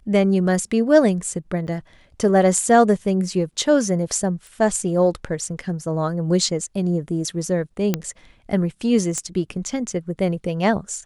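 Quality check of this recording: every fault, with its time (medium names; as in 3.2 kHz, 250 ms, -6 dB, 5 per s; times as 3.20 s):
1.67–1.68 s: dropout 5.8 ms
4.47 s: pop
7.94 s: pop -6 dBFS
9.18 s: pop -13 dBFS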